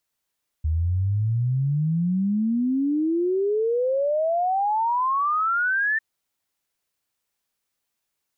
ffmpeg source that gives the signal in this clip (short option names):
-f lavfi -i "aevalsrc='0.106*clip(min(t,5.35-t)/0.01,0,1)*sin(2*PI*76*5.35/log(1800/76)*(exp(log(1800/76)*t/5.35)-1))':d=5.35:s=44100"